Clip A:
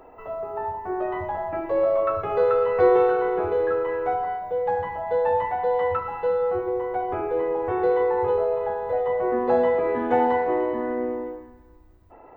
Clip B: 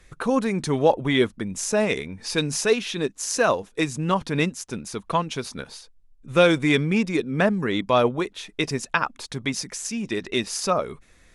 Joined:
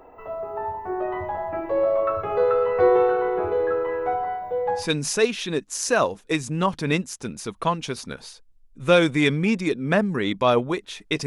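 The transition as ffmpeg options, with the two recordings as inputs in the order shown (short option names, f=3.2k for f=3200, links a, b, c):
-filter_complex "[0:a]apad=whole_dur=11.26,atrim=end=11.26,atrim=end=4.9,asetpts=PTS-STARTPTS[a];[1:a]atrim=start=2.2:end=8.74,asetpts=PTS-STARTPTS[b];[a][b]acrossfade=d=0.18:c1=tri:c2=tri"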